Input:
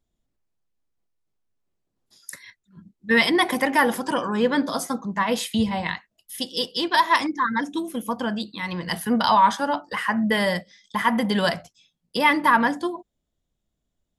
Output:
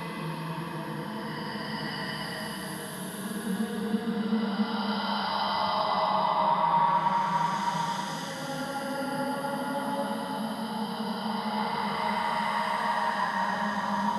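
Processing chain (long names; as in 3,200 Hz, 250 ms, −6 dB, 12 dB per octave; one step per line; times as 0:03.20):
frequency shifter −19 Hz
feedback delay with all-pass diffusion 696 ms, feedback 42%, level −3.5 dB
extreme stretch with random phases 9.6×, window 0.25 s, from 0:08.70
level −9 dB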